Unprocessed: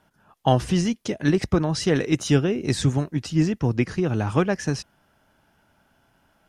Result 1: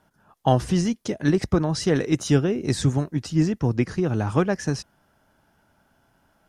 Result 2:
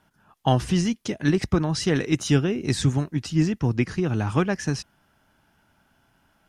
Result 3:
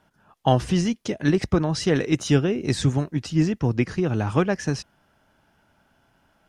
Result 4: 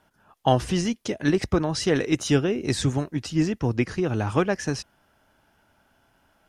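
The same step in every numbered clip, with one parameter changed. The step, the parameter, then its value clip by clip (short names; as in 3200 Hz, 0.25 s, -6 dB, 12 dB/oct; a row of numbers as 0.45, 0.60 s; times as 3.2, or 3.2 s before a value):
bell, frequency: 2700, 540, 13000, 160 Hz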